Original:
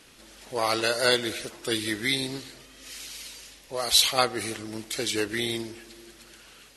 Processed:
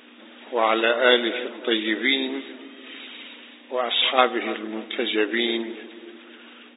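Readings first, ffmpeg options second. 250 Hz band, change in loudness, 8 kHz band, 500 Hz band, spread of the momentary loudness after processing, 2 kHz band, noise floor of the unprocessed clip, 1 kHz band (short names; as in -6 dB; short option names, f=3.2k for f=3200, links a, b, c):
+6.0 dB, +3.5 dB, under -40 dB, +6.0 dB, 20 LU, +6.0 dB, -53 dBFS, +6.0 dB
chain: -filter_complex "[0:a]aeval=exprs='val(0)+0.00447*(sin(2*PI*60*n/s)+sin(2*PI*2*60*n/s)/2+sin(2*PI*3*60*n/s)/3+sin(2*PI*4*60*n/s)/4+sin(2*PI*5*60*n/s)/5)':c=same,afftfilt=real='re*between(b*sr/4096,210,3800)':imag='im*between(b*sr/4096,210,3800)':win_size=4096:overlap=0.75,asplit=2[a][b];[b]adelay=291,lowpass=f=830:p=1,volume=-13dB,asplit=2[c][d];[d]adelay=291,lowpass=f=830:p=1,volume=0.47,asplit=2[e][f];[f]adelay=291,lowpass=f=830:p=1,volume=0.47,asplit=2[g][h];[h]adelay=291,lowpass=f=830:p=1,volume=0.47,asplit=2[i][j];[j]adelay=291,lowpass=f=830:p=1,volume=0.47[k];[a][c][e][g][i][k]amix=inputs=6:normalize=0,volume=6dB"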